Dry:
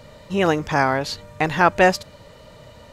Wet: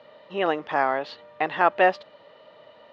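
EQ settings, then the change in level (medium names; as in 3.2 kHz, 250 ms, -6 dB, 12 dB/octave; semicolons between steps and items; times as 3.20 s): cabinet simulation 470–3100 Hz, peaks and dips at 490 Hz -3 dB, 960 Hz -4 dB, 1.5 kHz -6 dB, 2.3 kHz -8 dB; 0.0 dB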